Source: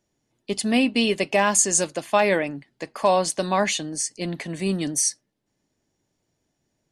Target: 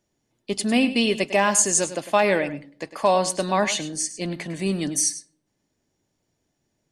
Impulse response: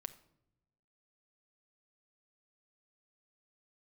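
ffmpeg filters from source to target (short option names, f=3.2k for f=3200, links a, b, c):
-filter_complex "[0:a]asplit=2[a][b];[1:a]atrim=start_sample=2205,asetrate=74970,aresample=44100,adelay=102[c];[b][c]afir=irnorm=-1:irlink=0,volume=-5dB[d];[a][d]amix=inputs=2:normalize=0"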